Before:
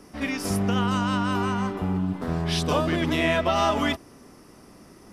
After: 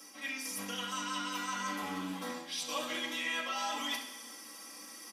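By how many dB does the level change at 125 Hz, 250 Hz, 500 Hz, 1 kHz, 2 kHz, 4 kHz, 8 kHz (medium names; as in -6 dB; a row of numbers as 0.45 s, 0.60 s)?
-26.5 dB, -17.5 dB, -18.5 dB, -11.0 dB, -7.5 dB, -5.0 dB, -1.5 dB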